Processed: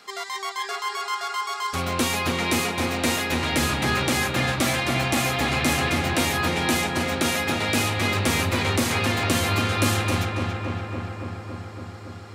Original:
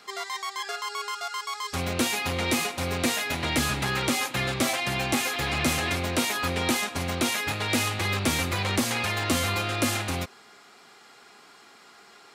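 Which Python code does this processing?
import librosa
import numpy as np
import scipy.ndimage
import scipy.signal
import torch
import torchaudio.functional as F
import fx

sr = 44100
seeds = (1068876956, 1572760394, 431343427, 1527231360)

y = fx.echo_filtered(x, sr, ms=280, feedback_pct=80, hz=3100.0, wet_db=-4.0)
y = y * 10.0 ** (1.5 / 20.0)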